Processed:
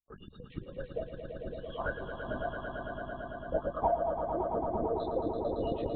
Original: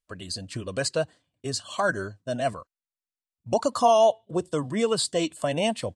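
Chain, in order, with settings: spectral gate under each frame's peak -10 dB strong; chorus voices 6, 0.39 Hz, delay 18 ms, depth 2.6 ms; transient shaper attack +4 dB, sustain -2 dB; LPC vocoder at 8 kHz whisper; on a send: echo with a slow build-up 112 ms, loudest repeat 5, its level -8 dB; on the sum: trim -8.5 dB

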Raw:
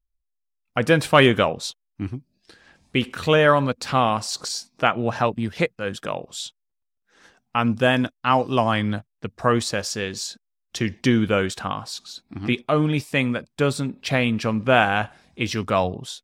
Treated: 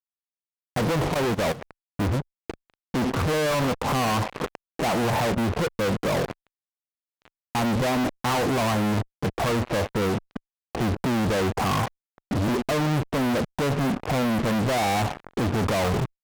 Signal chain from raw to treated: steep low-pass 1.1 kHz 48 dB/octave; peak limiter -16 dBFS, peak gain reduction 11 dB; fuzz box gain 55 dB, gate -51 dBFS; Chebyshev shaper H 3 -16 dB, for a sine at -9.5 dBFS; 1.14–1.62 s: level held to a coarse grid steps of 16 dB; trim -7 dB

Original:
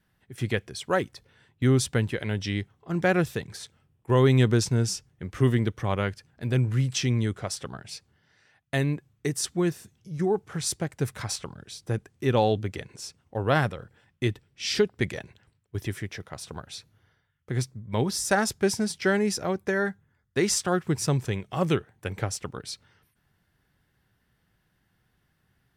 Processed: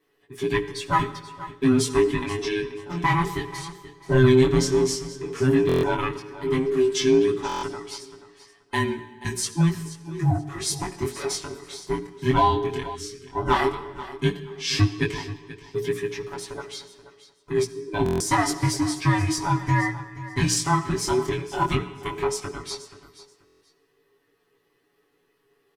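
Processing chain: every band turned upside down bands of 500 Hz; treble shelf 7.8 kHz -2.5 dB; hum notches 60/120/180/240/300/360/420 Hz; comb 7.1 ms, depth 87%; algorithmic reverb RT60 1.3 s, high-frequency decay 0.9×, pre-delay 25 ms, DRR 13.5 dB; in parallel at -5.5 dB: one-sided clip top -19 dBFS, bottom -14.5 dBFS; on the sum: chorus 0.12 Hz, delay 16.5 ms, depth 7.2 ms; on a send: feedback delay 481 ms, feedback 20%, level -15.5 dB; on the sum: time-frequency box 12.95–13.26 s, 520–1100 Hz -22 dB; buffer glitch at 5.67/7.47/18.04/23.45 s, samples 1024, times 6

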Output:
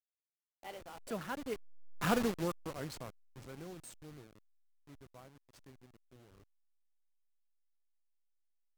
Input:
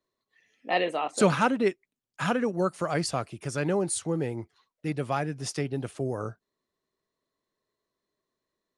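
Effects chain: send-on-delta sampling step -27 dBFS; Doppler pass-by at 2.12 s, 30 m/s, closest 5.8 m; trim -3.5 dB

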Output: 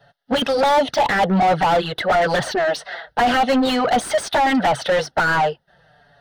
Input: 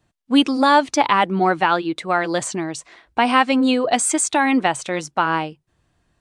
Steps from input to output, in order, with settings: static phaser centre 1.6 kHz, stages 8; touch-sensitive flanger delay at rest 7.2 ms, full sweep at -16 dBFS; overdrive pedal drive 32 dB, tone 1.2 kHz, clips at -9 dBFS; trim +1.5 dB

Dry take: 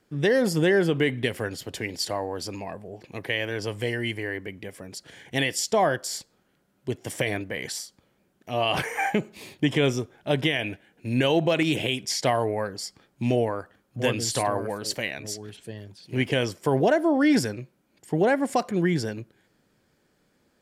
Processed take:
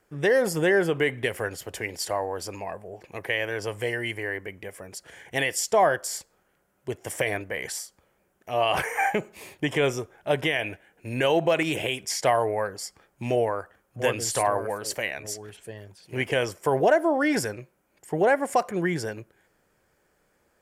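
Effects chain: graphic EQ 125/250/4000 Hz -7/-10/-10 dB; trim +3.5 dB

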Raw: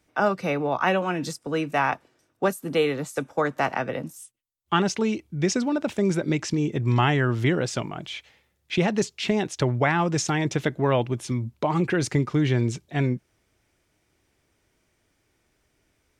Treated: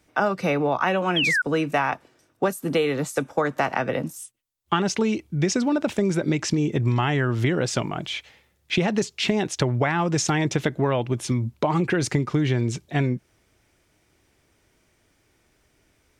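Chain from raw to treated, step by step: painted sound fall, 1.16–1.42 s, 1.4–3.4 kHz -24 dBFS; compression, threshold -23 dBFS, peak gain reduction 8 dB; trim +5 dB

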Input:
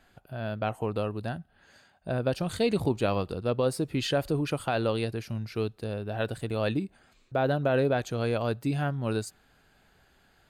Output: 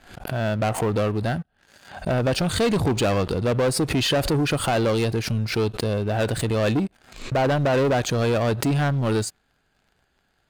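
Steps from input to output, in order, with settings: low-pass 11 kHz; waveshaping leveller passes 3; swell ahead of each attack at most 110 dB/s

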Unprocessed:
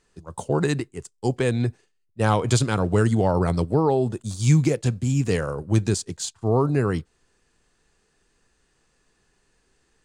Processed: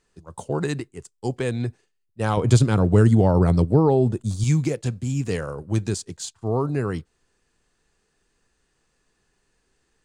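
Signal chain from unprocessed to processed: 2.37–4.44 s: bass shelf 490 Hz +9 dB; trim -3 dB

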